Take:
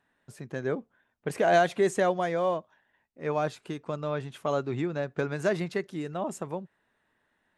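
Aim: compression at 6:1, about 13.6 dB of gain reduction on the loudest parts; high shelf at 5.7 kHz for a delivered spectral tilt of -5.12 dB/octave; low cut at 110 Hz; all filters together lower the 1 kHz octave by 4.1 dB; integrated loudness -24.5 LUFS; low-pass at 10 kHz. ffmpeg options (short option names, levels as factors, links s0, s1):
-af "highpass=110,lowpass=10000,equalizer=f=1000:t=o:g=-7.5,highshelf=f=5700:g=9,acompressor=threshold=0.0178:ratio=6,volume=6.31"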